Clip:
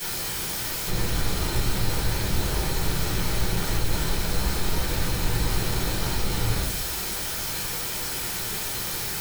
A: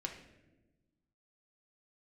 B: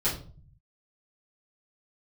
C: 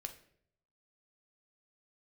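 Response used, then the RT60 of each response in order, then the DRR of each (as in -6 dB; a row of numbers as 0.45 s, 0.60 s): B; 1.1 s, 0.45 s, 0.65 s; 1.5 dB, -11.5 dB, 5.5 dB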